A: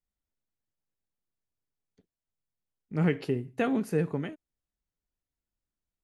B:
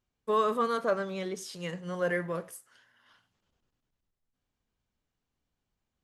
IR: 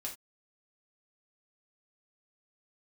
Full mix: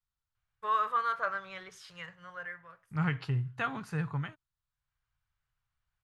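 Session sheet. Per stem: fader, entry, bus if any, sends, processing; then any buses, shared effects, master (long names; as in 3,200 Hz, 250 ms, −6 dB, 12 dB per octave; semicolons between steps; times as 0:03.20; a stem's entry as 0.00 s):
−2.0 dB, 0.00 s, no send, graphic EQ with 10 bands 125 Hz +6 dB, 250 Hz +12 dB, 500 Hz −3 dB, 1,000 Hz +7 dB, 2,000 Hz −4 dB, 4,000 Hz +7 dB, 8,000 Hz +8 dB
−0.5 dB, 0.35 s, no send, automatic ducking −16 dB, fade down 1.00 s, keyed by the first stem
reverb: not used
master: drawn EQ curve 130 Hz 0 dB, 240 Hz −27 dB, 1,400 Hz +5 dB, 8,500 Hz −14 dB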